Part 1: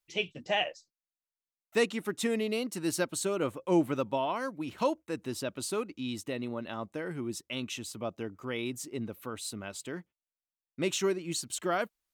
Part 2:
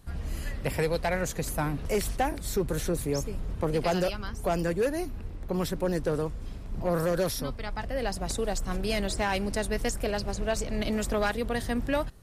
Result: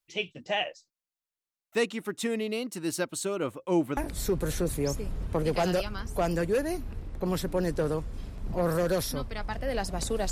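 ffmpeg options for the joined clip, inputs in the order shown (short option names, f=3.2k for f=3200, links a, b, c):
-filter_complex "[0:a]apad=whole_dur=10.31,atrim=end=10.31,atrim=end=3.972[a];[1:a]atrim=start=2.248:end=8.59[b];[a][b]acrossfade=d=0.004:c1=hsin:c2=hsin"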